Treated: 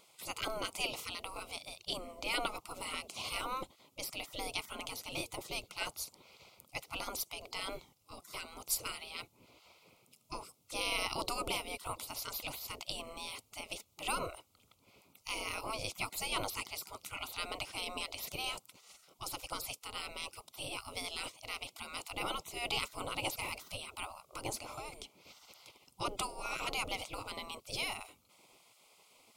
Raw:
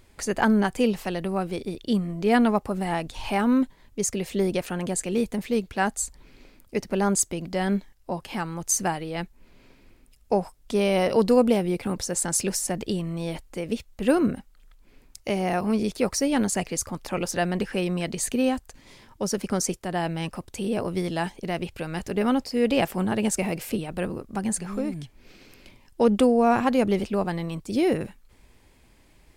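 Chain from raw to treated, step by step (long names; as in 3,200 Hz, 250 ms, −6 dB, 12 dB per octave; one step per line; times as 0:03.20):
Butterworth band-reject 1,700 Hz, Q 2
gate on every frequency bin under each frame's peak −20 dB weak
level +1 dB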